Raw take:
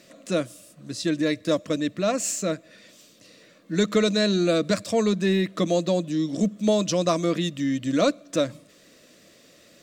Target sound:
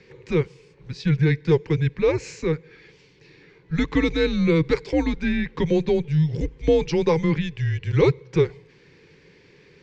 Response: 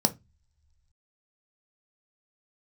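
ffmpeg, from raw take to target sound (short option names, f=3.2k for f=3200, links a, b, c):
-af "highpass=270,equalizer=f=310:t=q:w=4:g=8,equalizer=f=610:t=q:w=4:g=6,equalizer=f=920:t=q:w=4:g=3,equalizer=f=1.4k:t=q:w=4:g=-5,equalizer=f=2.3k:t=q:w=4:g=8,equalizer=f=3.7k:t=q:w=4:g=-7,lowpass=f=4.7k:w=0.5412,lowpass=f=4.7k:w=1.3066,afreqshift=-160"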